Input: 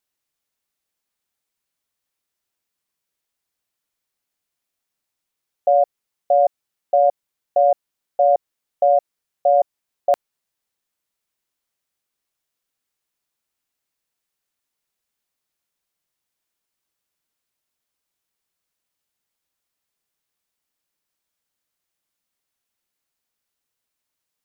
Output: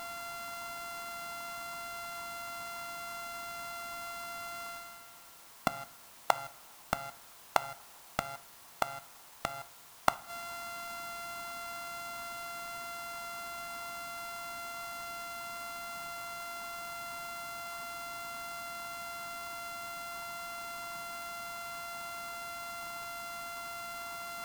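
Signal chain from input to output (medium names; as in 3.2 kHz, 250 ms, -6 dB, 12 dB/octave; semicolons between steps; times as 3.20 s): sorted samples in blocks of 64 samples; reverse; upward compressor, threshold -24 dBFS; reverse; inverted gate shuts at -20 dBFS, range -36 dB; graphic EQ 250/500/1000 Hz +5/-8/+6 dB; word length cut 10-bit, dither triangular; peaking EQ 990 Hz +9.5 dB 0.71 oct; reverberation, pre-delay 3 ms, DRR 15 dB; trim +4.5 dB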